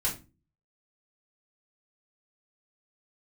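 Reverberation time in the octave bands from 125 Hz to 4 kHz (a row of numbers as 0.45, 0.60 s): 0.55, 0.50, 0.35, 0.25, 0.25, 0.25 s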